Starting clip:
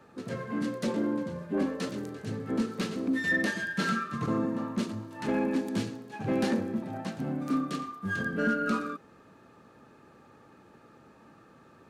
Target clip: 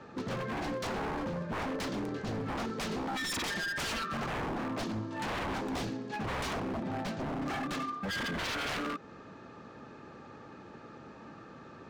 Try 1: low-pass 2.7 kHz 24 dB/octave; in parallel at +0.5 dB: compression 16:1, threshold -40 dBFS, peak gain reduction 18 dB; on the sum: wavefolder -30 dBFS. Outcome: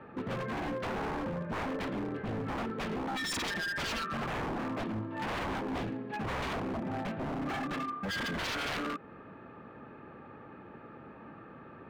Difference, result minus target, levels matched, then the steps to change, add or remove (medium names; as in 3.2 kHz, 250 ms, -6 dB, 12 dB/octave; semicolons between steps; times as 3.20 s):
8 kHz band -2.5 dB
change: low-pass 6.4 kHz 24 dB/octave